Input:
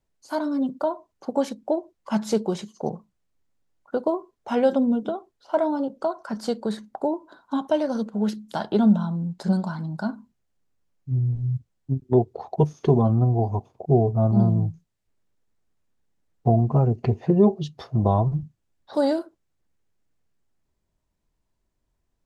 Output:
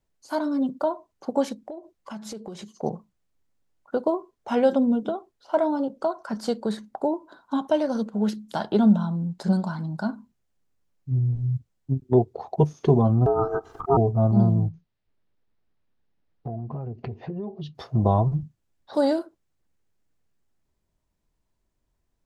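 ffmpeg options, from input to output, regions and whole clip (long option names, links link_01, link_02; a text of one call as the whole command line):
ffmpeg -i in.wav -filter_complex "[0:a]asettb=1/sr,asplit=3[link_01][link_02][link_03];[link_01]atrim=end=1.624[link_04];[link_02]atrim=start=1.62:end=2.83,asetpts=PTS-STARTPTS,afade=type=in:duration=0.004:curve=qsin,afade=type=out:start_time=1.206:duration=0.004:curve=qsin,bandreject=frequency=910:width=18,acompressor=threshold=-34dB:ratio=6:attack=3.2:release=140:knee=1:detection=peak[link_05];[link_03]atrim=start=2.826[link_06];[link_04][link_05]acrossfade=duration=0.004:curve1=hsin:curve2=qsin[link_07];[link_07][link_06]acrossfade=duration=0.004:curve1=qsin:curve2=hsin,asettb=1/sr,asplit=3[link_08][link_09][link_10];[link_08]atrim=end=13.264[link_11];[link_09]atrim=start=13.26:end=13.97,asetpts=PTS-STARTPTS,afade=type=in:duration=0.004:curve=qsin,afade=type=out:start_time=0.706:duration=0.004:curve=qsin,aeval=exprs='val(0)*sin(2*PI*550*n/s)':channel_layout=same,acompressor=mode=upward:threshold=-25dB:ratio=2.5:attack=3.2:release=140:knee=2.83:detection=peak,aecho=1:1:2.5:0.61,atrim=end_sample=31311[link_12];[link_10]atrim=start=13.966[link_13];[link_11][link_12]acrossfade=duration=0.004:curve1=hsin:curve2=qsin[link_14];[link_14][link_13]acrossfade=duration=0.004:curve1=qsin:curve2=hsin,asettb=1/sr,asplit=3[link_15][link_16][link_17];[link_15]atrim=end=14.684[link_18];[link_16]atrim=start=14.68:end=17.75,asetpts=PTS-STARTPTS,afade=type=in:duration=0.004:curve=qsin,afade=type=out:start_time=3.066:duration=0.004:curve=qsin,lowpass=frequency=4700:width=0.5412,lowpass=frequency=4700:width=1.3066,acompressor=threshold=-30dB:ratio=6:attack=3.2:release=140:knee=1:detection=peak[link_19];[link_17]atrim=start=17.746[link_20];[link_18][link_19]acrossfade=duration=0.004:curve1=hsin:curve2=qsin[link_21];[link_21][link_20]acrossfade=duration=0.004:curve1=qsin:curve2=hsin" out.wav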